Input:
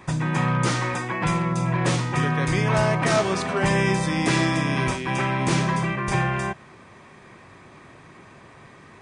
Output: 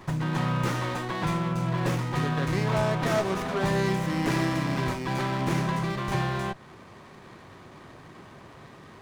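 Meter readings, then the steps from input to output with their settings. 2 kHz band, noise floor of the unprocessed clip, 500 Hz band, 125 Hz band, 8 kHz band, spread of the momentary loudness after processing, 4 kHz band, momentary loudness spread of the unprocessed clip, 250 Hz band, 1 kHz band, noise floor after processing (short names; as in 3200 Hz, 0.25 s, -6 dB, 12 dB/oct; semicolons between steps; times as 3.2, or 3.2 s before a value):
-7.0 dB, -48 dBFS, -3.5 dB, -4.0 dB, -9.0 dB, 4 LU, -5.5 dB, 4 LU, -4.0 dB, -4.5 dB, -49 dBFS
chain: in parallel at +0.5 dB: compressor, threshold -33 dBFS, peak gain reduction 15.5 dB; on the sum: running maximum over 9 samples; gain -6 dB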